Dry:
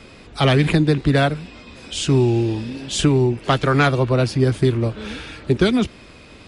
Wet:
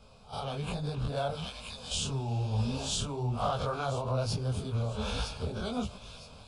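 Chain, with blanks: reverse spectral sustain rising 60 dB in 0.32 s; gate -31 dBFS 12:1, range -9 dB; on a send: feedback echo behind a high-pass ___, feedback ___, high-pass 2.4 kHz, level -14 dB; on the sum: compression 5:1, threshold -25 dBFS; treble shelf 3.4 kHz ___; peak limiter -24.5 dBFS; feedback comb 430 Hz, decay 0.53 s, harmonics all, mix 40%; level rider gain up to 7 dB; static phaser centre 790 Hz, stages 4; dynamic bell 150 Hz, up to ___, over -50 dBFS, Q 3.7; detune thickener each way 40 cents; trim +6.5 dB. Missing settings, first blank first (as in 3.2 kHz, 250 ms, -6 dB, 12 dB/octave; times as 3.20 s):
965 ms, 31%, -4.5 dB, -6 dB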